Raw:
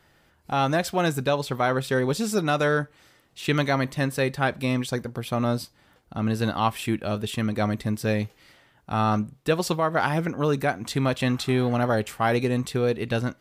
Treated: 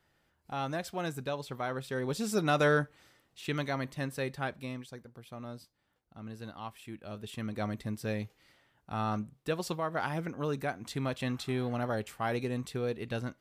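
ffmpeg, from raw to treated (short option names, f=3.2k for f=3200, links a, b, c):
-af "volume=6dB,afade=t=in:st=1.93:d=0.74:silence=0.354813,afade=t=out:st=2.67:d=0.81:silence=0.421697,afade=t=out:st=4.38:d=0.5:silence=0.375837,afade=t=in:st=6.91:d=0.71:silence=0.354813"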